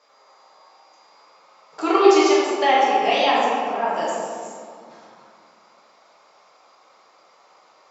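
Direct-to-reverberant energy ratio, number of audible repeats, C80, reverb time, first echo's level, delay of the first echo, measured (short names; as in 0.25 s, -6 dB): -8.0 dB, none, -0.5 dB, 2.2 s, none, none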